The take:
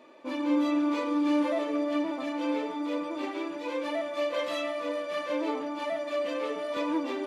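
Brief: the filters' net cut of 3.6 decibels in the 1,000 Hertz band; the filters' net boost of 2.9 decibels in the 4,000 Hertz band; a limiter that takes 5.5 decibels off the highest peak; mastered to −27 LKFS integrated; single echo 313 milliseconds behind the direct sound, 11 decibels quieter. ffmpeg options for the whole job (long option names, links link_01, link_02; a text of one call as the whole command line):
ffmpeg -i in.wav -af "equalizer=frequency=1000:width_type=o:gain=-4.5,equalizer=frequency=4000:width_type=o:gain=4,alimiter=limit=-23.5dB:level=0:latency=1,aecho=1:1:313:0.282,volume=5dB" out.wav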